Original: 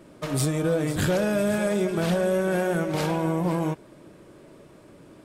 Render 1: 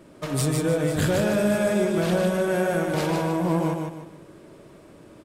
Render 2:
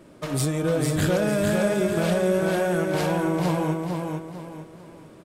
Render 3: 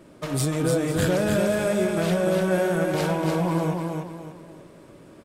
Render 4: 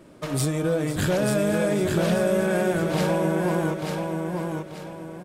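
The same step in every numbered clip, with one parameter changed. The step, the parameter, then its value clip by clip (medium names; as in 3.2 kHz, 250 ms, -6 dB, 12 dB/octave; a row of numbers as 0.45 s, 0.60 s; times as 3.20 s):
feedback delay, time: 152 ms, 449 ms, 294 ms, 886 ms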